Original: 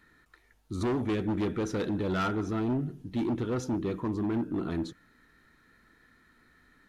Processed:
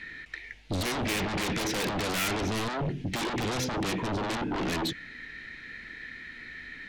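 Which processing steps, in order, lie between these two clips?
low-pass 3.9 kHz 12 dB/octave; resonant high shelf 1.6 kHz +9 dB, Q 3; in parallel at -5 dB: sine folder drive 14 dB, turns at -21 dBFS; on the sum: trim -3 dB

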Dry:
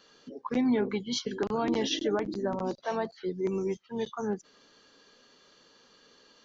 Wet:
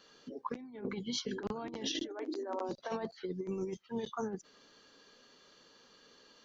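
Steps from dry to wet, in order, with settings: compressor with a negative ratio -32 dBFS, ratio -0.5; 2.08–2.69 s: brick-wall FIR high-pass 250 Hz; trim -5 dB

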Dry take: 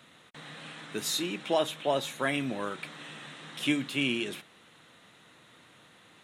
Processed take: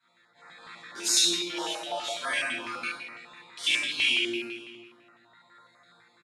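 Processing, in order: local Wiener filter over 15 samples; level rider gain up to 8 dB; chord resonator A#2 fifth, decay 0.57 s; reverb removal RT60 1.9 s; compression 2:1, threshold -45 dBFS, peak gain reduction 9 dB; frequency weighting ITU-R 468; delay 513 ms -23 dB; reverberation RT60 1.3 s, pre-delay 7 ms, DRR -11 dB; step-sequenced notch 12 Hz 600–3300 Hz; trim +3 dB

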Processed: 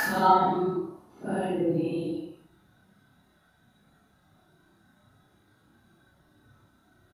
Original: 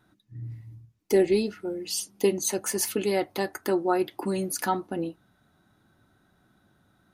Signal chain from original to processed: Paulstretch 4.7×, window 0.05 s, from 4.64 s; reverse bouncing-ball echo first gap 30 ms, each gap 1.1×, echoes 5

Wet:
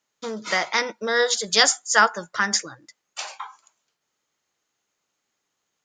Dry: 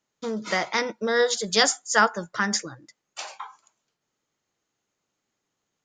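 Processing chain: bass shelf 470 Hz -9.5 dB; trim +4 dB

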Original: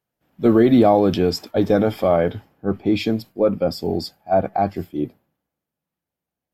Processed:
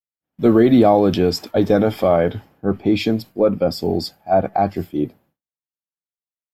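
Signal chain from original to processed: expander -51 dBFS; in parallel at -2.5 dB: compression, threshold -25 dBFS, peak gain reduction 14.5 dB

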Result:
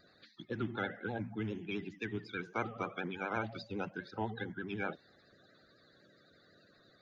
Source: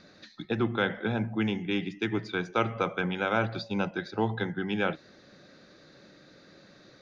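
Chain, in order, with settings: coarse spectral quantiser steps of 30 dB; vibrato 12 Hz 76 cents; trim -9 dB

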